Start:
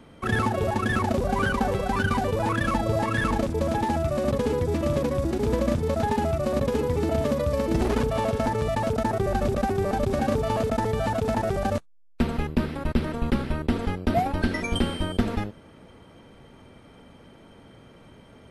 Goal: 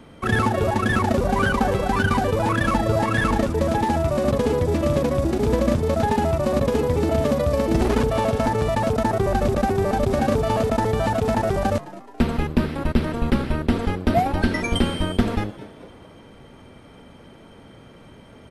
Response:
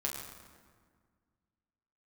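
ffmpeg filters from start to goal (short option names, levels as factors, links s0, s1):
-filter_complex "[0:a]asplit=5[s0][s1][s2][s3][s4];[s1]adelay=213,afreqshift=98,volume=0.126[s5];[s2]adelay=426,afreqshift=196,volume=0.0603[s6];[s3]adelay=639,afreqshift=294,volume=0.0288[s7];[s4]adelay=852,afreqshift=392,volume=0.014[s8];[s0][s5][s6][s7][s8]amix=inputs=5:normalize=0,volume=1.58"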